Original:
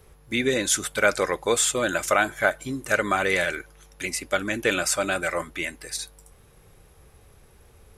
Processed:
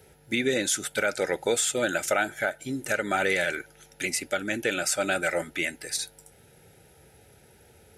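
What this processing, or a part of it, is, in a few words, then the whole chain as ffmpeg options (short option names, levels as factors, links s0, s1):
PA system with an anti-feedback notch: -af "highpass=110,asuperstop=centerf=1100:order=8:qfactor=3.7,alimiter=limit=0.168:level=0:latency=1:release=408,volume=1.19"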